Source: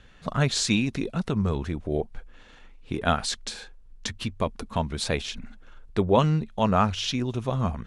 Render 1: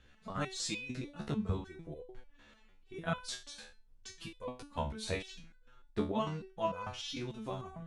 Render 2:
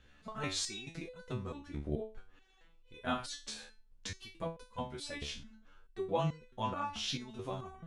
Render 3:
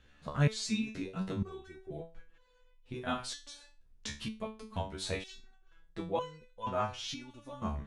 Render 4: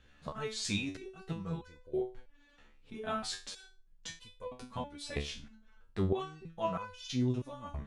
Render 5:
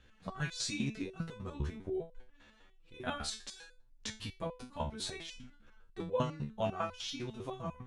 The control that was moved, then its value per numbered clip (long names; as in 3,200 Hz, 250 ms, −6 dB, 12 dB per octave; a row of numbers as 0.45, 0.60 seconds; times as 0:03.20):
step-sequenced resonator, speed: 6.7, 4.6, 2.1, 3.1, 10 Hertz